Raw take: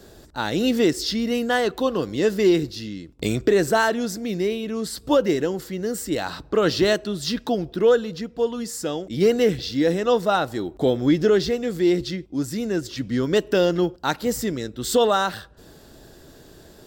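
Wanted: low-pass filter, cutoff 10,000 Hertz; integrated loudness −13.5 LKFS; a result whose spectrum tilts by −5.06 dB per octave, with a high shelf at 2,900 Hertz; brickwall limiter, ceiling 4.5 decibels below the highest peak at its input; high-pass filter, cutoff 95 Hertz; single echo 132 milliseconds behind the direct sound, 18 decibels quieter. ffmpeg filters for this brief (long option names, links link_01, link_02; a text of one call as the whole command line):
ffmpeg -i in.wav -af "highpass=95,lowpass=10000,highshelf=frequency=2900:gain=-7.5,alimiter=limit=-12.5dB:level=0:latency=1,aecho=1:1:132:0.126,volume=11dB" out.wav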